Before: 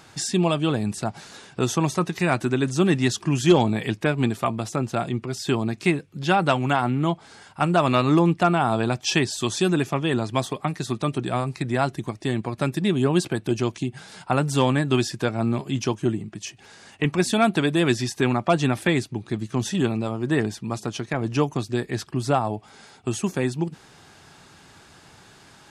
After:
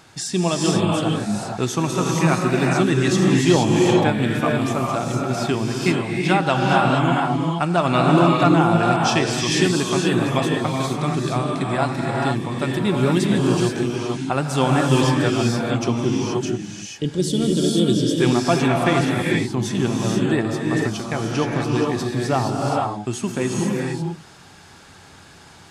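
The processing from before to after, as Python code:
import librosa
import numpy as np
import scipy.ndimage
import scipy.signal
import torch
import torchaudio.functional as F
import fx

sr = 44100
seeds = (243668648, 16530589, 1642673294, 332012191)

y = fx.spec_box(x, sr, start_s=16.82, length_s=1.35, low_hz=620.0, high_hz=2800.0, gain_db=-19)
y = fx.rev_gated(y, sr, seeds[0], gate_ms=500, shape='rising', drr_db=-2.0)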